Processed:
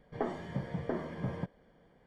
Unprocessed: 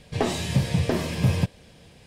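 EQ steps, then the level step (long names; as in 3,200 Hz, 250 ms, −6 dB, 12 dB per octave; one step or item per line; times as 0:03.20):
Savitzky-Golay smoothing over 41 samples
parametric band 92 Hz −14.5 dB 1.1 octaves
−8.5 dB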